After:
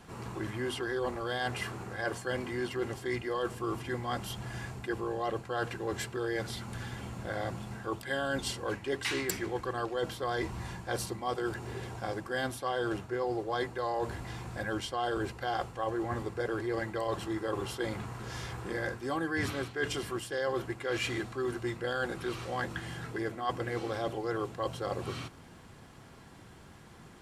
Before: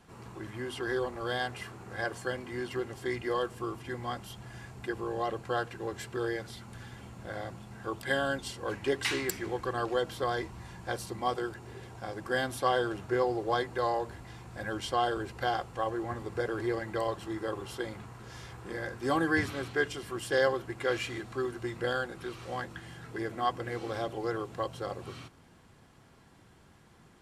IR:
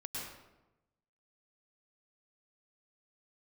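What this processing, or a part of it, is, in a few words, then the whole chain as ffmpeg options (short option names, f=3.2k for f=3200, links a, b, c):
compression on the reversed sound: -af "areverse,acompressor=threshold=-36dB:ratio=6,areverse,volume=6dB"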